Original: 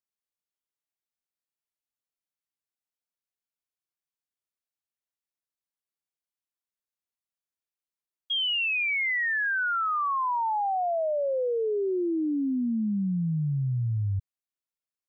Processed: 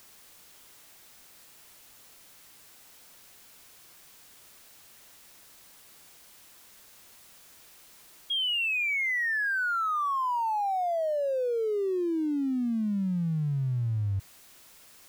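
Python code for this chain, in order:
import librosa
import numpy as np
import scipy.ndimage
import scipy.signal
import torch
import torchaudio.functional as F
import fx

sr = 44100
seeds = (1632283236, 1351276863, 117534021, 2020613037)

y = x + 0.5 * 10.0 ** (-42.5 / 20.0) * np.sign(x)
y = F.gain(torch.from_numpy(y), -2.0).numpy()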